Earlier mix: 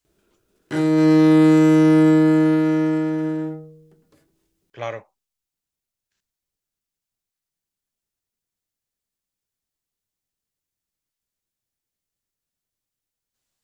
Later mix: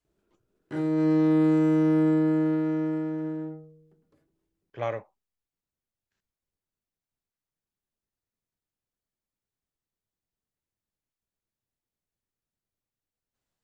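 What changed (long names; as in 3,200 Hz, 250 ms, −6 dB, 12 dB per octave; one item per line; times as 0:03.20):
background −8.0 dB
master: add high-shelf EQ 2,400 Hz −12 dB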